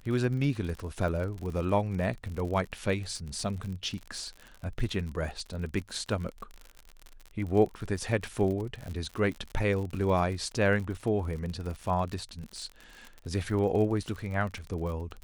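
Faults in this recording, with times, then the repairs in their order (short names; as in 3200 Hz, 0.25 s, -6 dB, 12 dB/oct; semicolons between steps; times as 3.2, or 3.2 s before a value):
crackle 50/s -35 dBFS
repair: de-click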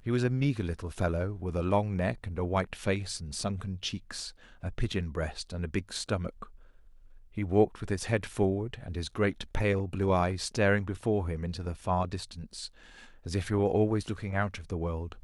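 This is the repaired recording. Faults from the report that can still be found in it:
none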